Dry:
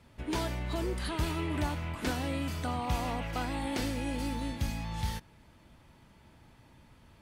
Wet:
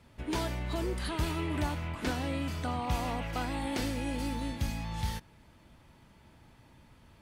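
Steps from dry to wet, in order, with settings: 1.87–2.91 high shelf 8900 Hz -6 dB

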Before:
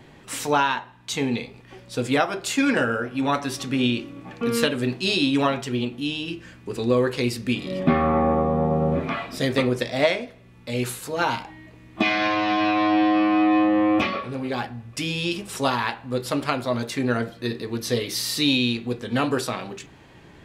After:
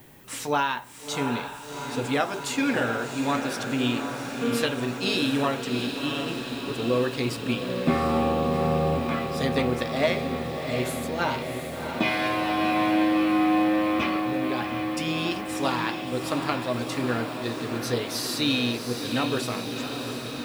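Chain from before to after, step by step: diffused feedback echo 0.712 s, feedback 74%, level -7 dB; added noise violet -52 dBFS; gain -4 dB

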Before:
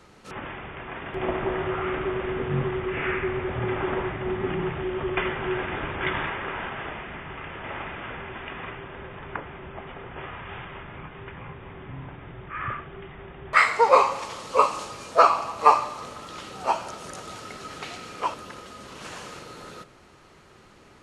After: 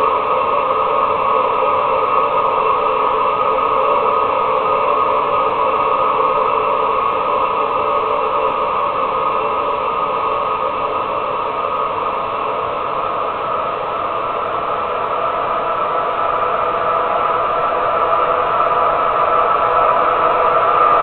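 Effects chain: in parallel at -5.5 dB: one-sided clip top -18 dBFS; on the sum: downsampling 8000 Hz; Paulstretch 35×, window 1.00 s, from 14.51; crackle 13/s -46 dBFS; gain +4.5 dB

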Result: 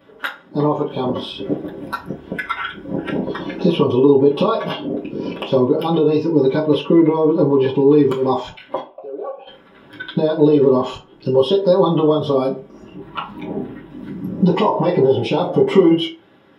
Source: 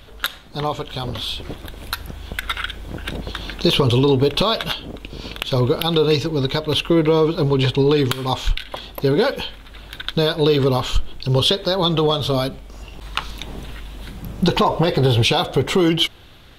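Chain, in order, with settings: 14.53–14.96 tilt shelf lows -3.5 dB; compressor 3:1, threshold -23 dBFS, peak gain reduction 9.5 dB; 8.8–9.47 vowel filter a; 12.93–13.9 bell 5800 Hz -10.5 dB 0.9 oct; spectral noise reduction 10 dB; reverb RT60 0.35 s, pre-delay 3 ms, DRR -6.5 dB; gain -11 dB

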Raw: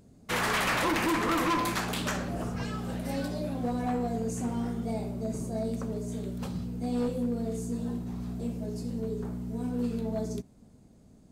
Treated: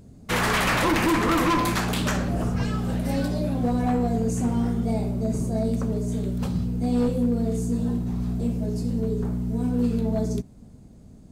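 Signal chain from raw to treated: low shelf 180 Hz +8 dB; gain +4.5 dB

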